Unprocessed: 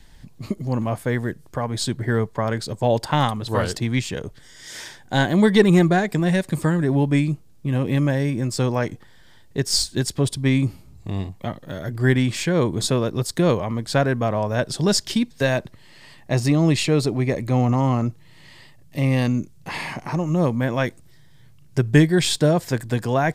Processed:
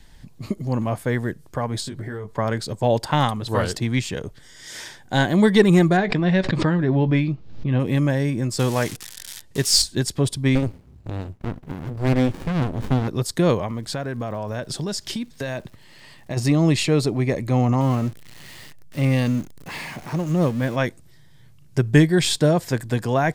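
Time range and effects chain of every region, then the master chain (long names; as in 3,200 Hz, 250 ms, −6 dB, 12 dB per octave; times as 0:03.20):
0:01.80–0:02.34: double-tracking delay 20 ms −5 dB + downward compressor 16 to 1, threshold −27 dBFS
0:05.97–0:07.80: low-pass filter 4,500 Hz 24 dB per octave + double-tracking delay 16 ms −13 dB + background raised ahead of every attack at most 73 dB per second
0:08.59–0:09.82: spike at every zero crossing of −20.5 dBFS + low-pass filter 12,000 Hz + parametric band 4,000 Hz +3 dB 2.7 octaves
0:10.55–0:13.08: parametric band 250 Hz +6.5 dB 0.22 octaves + windowed peak hold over 65 samples
0:13.66–0:16.36: downward compressor, threshold −24 dBFS + surface crackle 200 per second −45 dBFS
0:17.81–0:20.76: converter with a step at zero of −30 dBFS + parametric band 900 Hz −3.5 dB 0.73 octaves + expander for the loud parts, over −30 dBFS
whole clip: no processing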